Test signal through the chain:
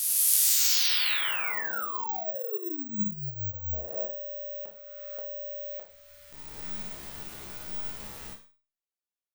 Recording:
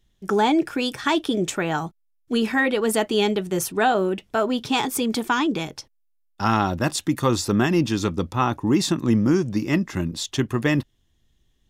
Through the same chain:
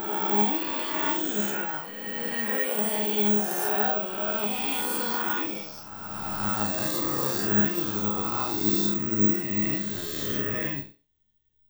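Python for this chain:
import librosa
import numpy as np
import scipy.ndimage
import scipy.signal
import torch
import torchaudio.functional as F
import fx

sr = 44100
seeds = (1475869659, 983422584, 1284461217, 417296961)

p1 = fx.spec_swells(x, sr, rise_s=2.76)
p2 = np.sign(p1) * np.maximum(np.abs(p1) - 10.0 ** (-24.0 / 20.0), 0.0)
p3 = p1 + (p2 * 10.0 ** (-11.0 / 20.0))
p4 = fx.resonator_bank(p3, sr, root=37, chord='fifth', decay_s=0.31)
p5 = fx.rev_schroeder(p4, sr, rt60_s=0.32, comb_ms=31, drr_db=8.0)
p6 = (np.kron(p5[::2], np.eye(2)[0]) * 2)[:len(p5)]
y = p6 * 10.0 ** (-5.5 / 20.0)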